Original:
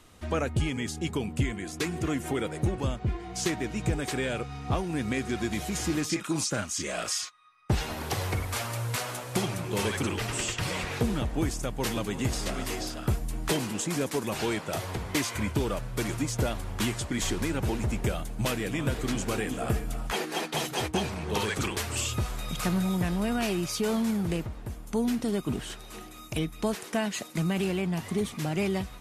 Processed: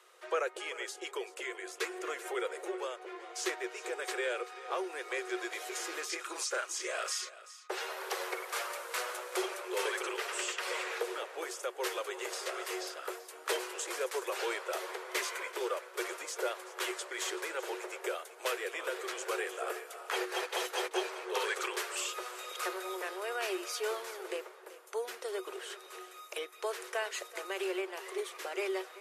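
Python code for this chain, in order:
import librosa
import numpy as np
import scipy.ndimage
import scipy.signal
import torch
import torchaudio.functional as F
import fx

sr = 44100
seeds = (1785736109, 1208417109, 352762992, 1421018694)

y = scipy.signal.sosfilt(scipy.signal.cheby1(6, 6, 360.0, 'highpass', fs=sr, output='sos'), x)
y = y + 10.0 ** (-16.5 / 20.0) * np.pad(y, (int(384 * sr / 1000.0), 0))[:len(y)]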